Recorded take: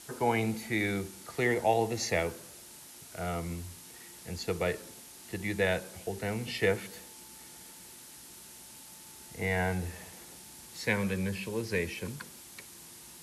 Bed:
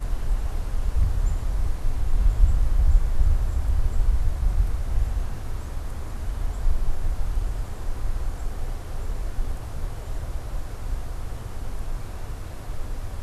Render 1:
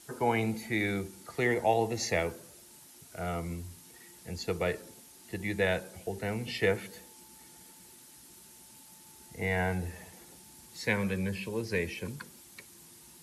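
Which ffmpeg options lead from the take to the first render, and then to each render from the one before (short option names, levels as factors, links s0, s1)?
-af "afftdn=nr=6:nf=-51"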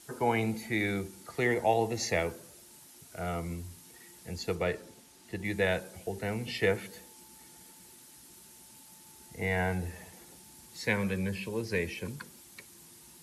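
-filter_complex "[0:a]asettb=1/sr,asplit=3[s0][s1][s2];[s0]atrim=end=4.554[s3];[s1]atrim=start=4.55:end=5.45,asetpts=PTS-STARTPTS,afade=t=in:d=0.004:c=qsin,afade=t=out:st=0.896:d=0.004:c=qsin,highshelf=f=9500:g=-9.5[s4];[s2]atrim=start=5.446[s5];[s3][s4]acrossfade=d=0.004:c1=hsin:c2=qsin[s6];[s6][s5]acrossfade=d=0.004:c1=qsin:c2=hsin"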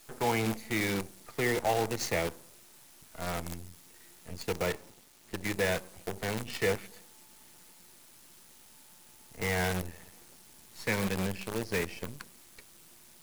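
-af "acrusher=bits=6:dc=4:mix=0:aa=0.000001,asoftclip=type=tanh:threshold=0.112"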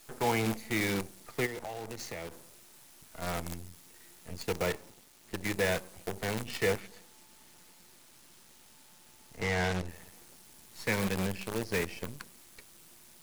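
-filter_complex "[0:a]asplit=3[s0][s1][s2];[s0]afade=t=out:st=1.45:d=0.02[s3];[s1]acompressor=threshold=0.0158:ratio=10:attack=3.2:release=140:knee=1:detection=peak,afade=t=in:st=1.45:d=0.02,afade=t=out:st=3.21:d=0.02[s4];[s2]afade=t=in:st=3.21:d=0.02[s5];[s3][s4][s5]amix=inputs=3:normalize=0,asettb=1/sr,asplit=3[s6][s7][s8];[s6]atrim=end=6.804[s9];[s7]atrim=start=6.8:end=9.89,asetpts=PTS-STARTPTS,afade=t=in:d=0.004:c=qsin,afade=t=out:st=3.086:d=0.004:c=qsin,acrossover=split=7700[s10][s11];[s11]acompressor=threshold=0.00126:ratio=4:attack=1:release=60[s12];[s10][s12]amix=inputs=2:normalize=0[s13];[s8]atrim=start=9.886[s14];[s9][s13]acrossfade=d=0.004:c1=hsin:c2=qsin[s15];[s15][s14]acrossfade=d=0.004:c1=qsin:c2=hsin"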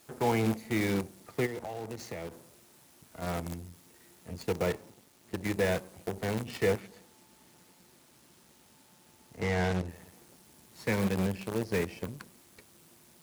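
-af "highpass=74,tiltshelf=f=870:g=4"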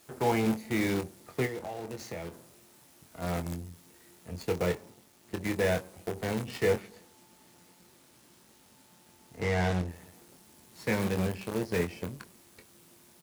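-filter_complex "[0:a]asplit=2[s0][s1];[s1]adelay=23,volume=0.422[s2];[s0][s2]amix=inputs=2:normalize=0"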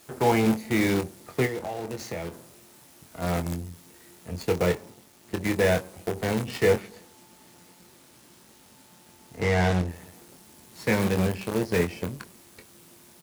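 -af "volume=1.88"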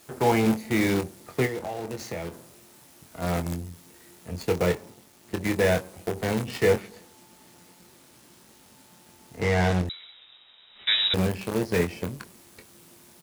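-filter_complex "[0:a]asettb=1/sr,asplit=3[s0][s1][s2];[s0]atrim=end=9.894[s3];[s1]atrim=start=9.89:end=11.14,asetpts=PTS-STARTPTS,afade=t=in:d=0.004:c=qsin,afade=t=out:st=1.246:d=0.004:c=qsin,lowpass=f=3400:t=q:w=0.5098,lowpass=f=3400:t=q:w=0.6013,lowpass=f=3400:t=q:w=0.9,lowpass=f=3400:t=q:w=2.563,afreqshift=-4000[s4];[s2]atrim=start=11.136[s5];[s3][s4]acrossfade=d=0.004:c1=hsin:c2=qsin[s6];[s6][s5]acrossfade=d=0.004:c1=qsin:c2=hsin"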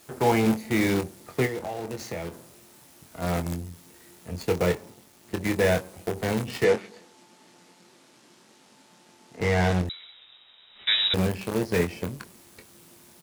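-filter_complex "[0:a]asettb=1/sr,asplit=3[s0][s1][s2];[s0]atrim=end=6.644[s3];[s1]atrim=start=6.64:end=9.41,asetpts=PTS-STARTPTS,afade=t=in:d=0.004:c=qsin,afade=t=out:st=2.766:d=0.004:c=qsin,highpass=190,lowpass=7300[s4];[s2]atrim=start=9.406[s5];[s3][s4]acrossfade=d=0.004:c1=hsin:c2=qsin[s6];[s6][s5]acrossfade=d=0.004:c1=qsin:c2=hsin"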